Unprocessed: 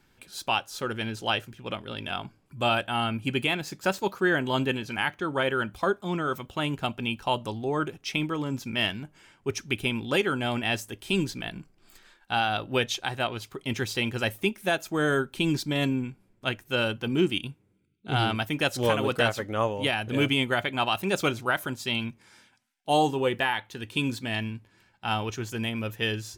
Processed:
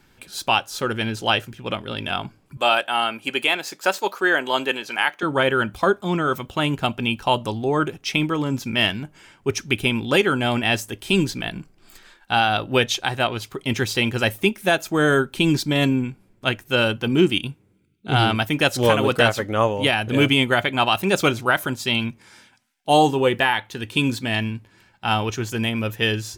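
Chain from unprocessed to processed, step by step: 2.57–5.23 HPF 450 Hz 12 dB/oct; gain +7 dB

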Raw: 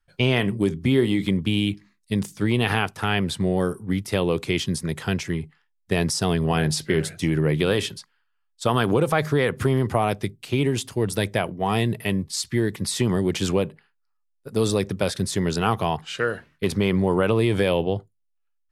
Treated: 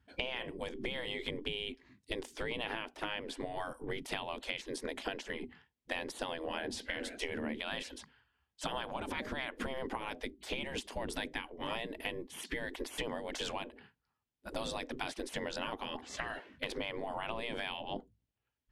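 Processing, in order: RIAA curve playback; spectral gate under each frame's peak -20 dB weak; thirty-one-band EQ 250 Hz +6 dB, 1250 Hz -7 dB, 3150 Hz +4 dB; compressor 8:1, threshold -42 dBFS, peak gain reduction 19.5 dB; gain +6.5 dB

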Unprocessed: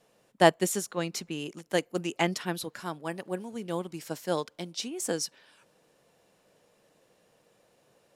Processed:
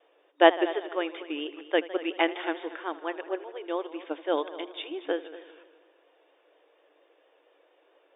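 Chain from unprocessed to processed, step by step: multi-head echo 78 ms, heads all three, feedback 44%, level -19 dB; vibrato 4.3 Hz 74 cents; FFT band-pass 280–3700 Hz; gain +2.5 dB

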